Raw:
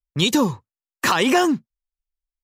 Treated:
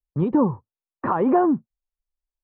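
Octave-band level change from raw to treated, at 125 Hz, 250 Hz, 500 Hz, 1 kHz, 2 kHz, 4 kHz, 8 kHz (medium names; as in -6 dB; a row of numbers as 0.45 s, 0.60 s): 0.0 dB, 0.0 dB, 0.0 dB, -1.5 dB, -16.0 dB, under -35 dB, under -40 dB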